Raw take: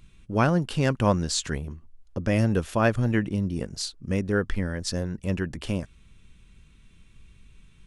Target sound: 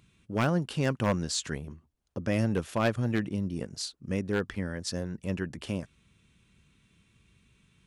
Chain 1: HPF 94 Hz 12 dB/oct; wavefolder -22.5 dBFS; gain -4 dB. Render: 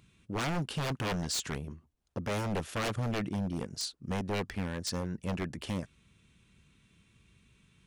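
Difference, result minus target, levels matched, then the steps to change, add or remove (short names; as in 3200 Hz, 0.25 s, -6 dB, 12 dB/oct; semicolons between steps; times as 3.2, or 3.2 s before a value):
wavefolder: distortion +16 dB
change: wavefolder -13.5 dBFS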